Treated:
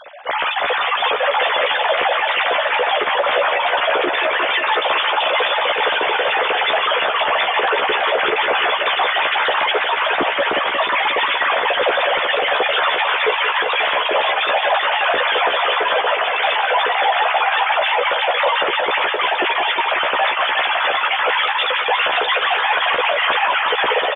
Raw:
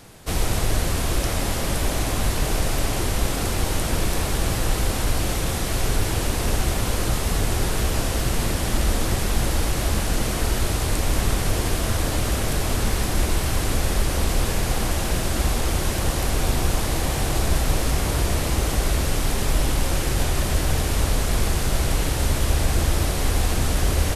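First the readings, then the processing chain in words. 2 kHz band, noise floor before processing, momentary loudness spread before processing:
+15.0 dB, -25 dBFS, 1 LU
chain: sine-wave speech; reverb removal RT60 1.7 s; AGC; limiter -12.5 dBFS, peak gain reduction 11.5 dB; doubler 14 ms -3.5 dB; on a send: multi-head echo 0.179 s, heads first and second, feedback 66%, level -11 dB

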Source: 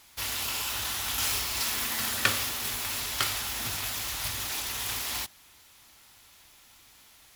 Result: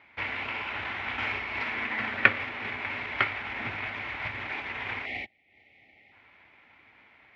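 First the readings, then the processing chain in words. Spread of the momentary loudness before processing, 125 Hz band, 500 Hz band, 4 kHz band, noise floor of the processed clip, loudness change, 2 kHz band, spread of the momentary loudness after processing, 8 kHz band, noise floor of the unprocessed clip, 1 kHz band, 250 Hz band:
5 LU, -1.5 dB, +3.5 dB, -9.5 dB, -60 dBFS, -1.5 dB, +6.0 dB, 10 LU, under -35 dB, -57 dBFS, +2.5 dB, +2.5 dB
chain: transient shaper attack +3 dB, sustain -9 dB; speaker cabinet 110–2300 Hz, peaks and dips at 150 Hz -6 dB, 1200 Hz -4 dB, 2200 Hz +9 dB; spectral gain 5.06–6.13, 840–1800 Hz -23 dB; gain +3.5 dB

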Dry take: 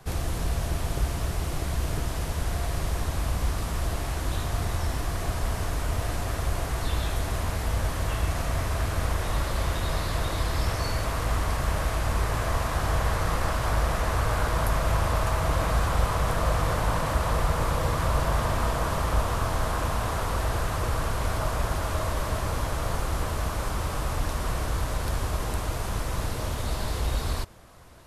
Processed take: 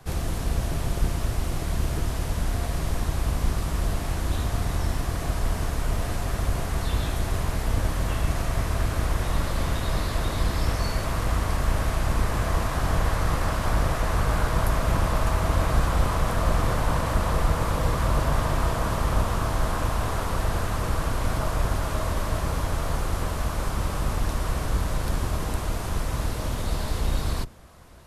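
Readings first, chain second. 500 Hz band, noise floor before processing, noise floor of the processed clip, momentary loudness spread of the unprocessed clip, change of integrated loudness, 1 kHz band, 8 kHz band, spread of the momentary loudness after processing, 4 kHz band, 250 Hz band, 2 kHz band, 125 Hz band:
+0.5 dB, -31 dBFS, -30 dBFS, 5 LU, +1.5 dB, 0.0 dB, 0.0 dB, 4 LU, 0.0 dB, +3.5 dB, 0.0 dB, +1.5 dB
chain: octaver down 1 oct, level 0 dB

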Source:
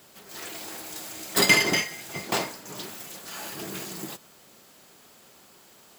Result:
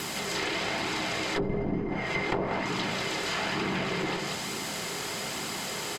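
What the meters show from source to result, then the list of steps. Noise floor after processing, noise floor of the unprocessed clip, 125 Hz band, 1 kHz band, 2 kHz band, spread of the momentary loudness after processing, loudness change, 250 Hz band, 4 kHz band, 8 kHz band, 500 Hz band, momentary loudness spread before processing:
-35 dBFS, -55 dBFS, +5.5 dB, +3.0 dB, -3.5 dB, 4 LU, -3.5 dB, +3.5 dB, -2.0 dB, -4.5 dB, +2.5 dB, 20 LU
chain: per-bin compression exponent 0.6; echo 0.188 s -7 dB; tube stage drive 17 dB, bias 0.7; notch 580 Hz, Q 15; treble ducked by the level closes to 410 Hz, closed at -21 dBFS; flange 1.1 Hz, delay 0.7 ms, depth 1.7 ms, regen -55%; fast leveller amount 50%; gain +4.5 dB

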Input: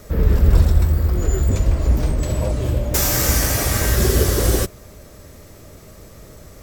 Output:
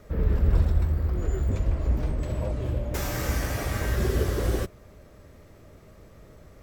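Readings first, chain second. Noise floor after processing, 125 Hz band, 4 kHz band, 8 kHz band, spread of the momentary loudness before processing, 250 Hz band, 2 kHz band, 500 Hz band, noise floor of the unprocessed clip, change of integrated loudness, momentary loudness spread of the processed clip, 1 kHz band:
-51 dBFS, -8.0 dB, -14.0 dB, -18.0 dB, 6 LU, -8.0 dB, -8.5 dB, -8.0 dB, -43 dBFS, -9.0 dB, 6 LU, -8.0 dB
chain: tone controls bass 0 dB, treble -11 dB; gain -8 dB

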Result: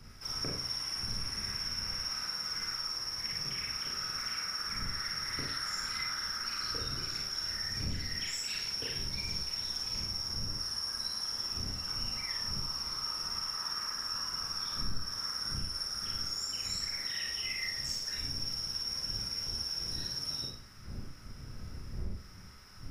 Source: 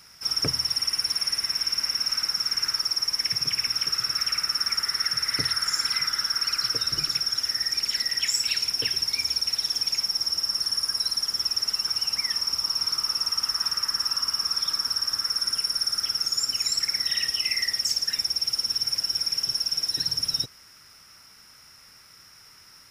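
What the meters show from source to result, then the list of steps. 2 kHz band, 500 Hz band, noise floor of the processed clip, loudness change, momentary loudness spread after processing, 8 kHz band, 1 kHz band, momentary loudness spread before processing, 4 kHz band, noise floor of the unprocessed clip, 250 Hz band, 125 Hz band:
-7.0 dB, -4.0 dB, -48 dBFS, -10.5 dB, 5 LU, -10.5 dB, -5.5 dB, 1 LU, -11.0 dB, -52 dBFS, n/a, +2.0 dB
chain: wind noise 99 Hz -39 dBFS; high shelf 4100 Hz -9.5 dB; compressor, threshold -31 dBFS, peak gain reduction 11 dB; bell 2500 Hz -2.5 dB; Schroeder reverb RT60 0.48 s, combs from 30 ms, DRR -2 dB; gain -4.5 dB

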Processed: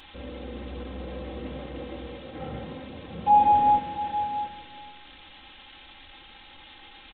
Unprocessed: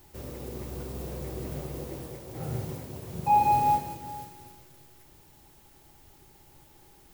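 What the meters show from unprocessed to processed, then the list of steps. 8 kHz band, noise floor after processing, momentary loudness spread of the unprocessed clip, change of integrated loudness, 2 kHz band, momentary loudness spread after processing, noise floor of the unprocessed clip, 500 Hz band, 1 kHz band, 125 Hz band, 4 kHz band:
under -30 dB, -50 dBFS, 18 LU, +4.0 dB, +3.0 dB, 21 LU, -57 dBFS, +1.5 dB, +4.0 dB, -4.5 dB, +7.5 dB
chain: switching spikes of -26 dBFS; notches 50/100 Hz; on a send: echo 0.683 s -11.5 dB; on the sum: downsampling 8000 Hz; comb 3.8 ms, depth 73%

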